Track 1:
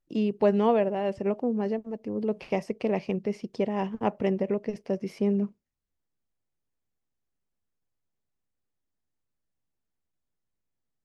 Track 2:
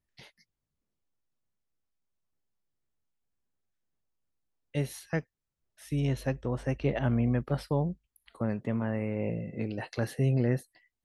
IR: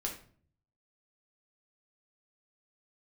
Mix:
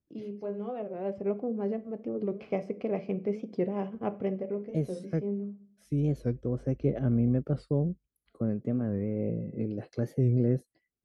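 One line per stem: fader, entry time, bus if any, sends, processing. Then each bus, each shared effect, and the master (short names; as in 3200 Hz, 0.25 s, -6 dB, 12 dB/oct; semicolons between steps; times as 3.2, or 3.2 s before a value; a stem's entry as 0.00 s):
-7.0 dB, 0.00 s, send -8.5 dB, vocal rider 0.5 s; auto duck -16 dB, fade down 0.40 s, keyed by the second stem
+2.5 dB, 0.00 s, no send, band shelf 1600 Hz -10.5 dB 2.9 oct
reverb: on, RT60 0.45 s, pre-delay 6 ms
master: LPF 1700 Hz 6 dB/oct; notch comb 920 Hz; record warp 45 rpm, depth 160 cents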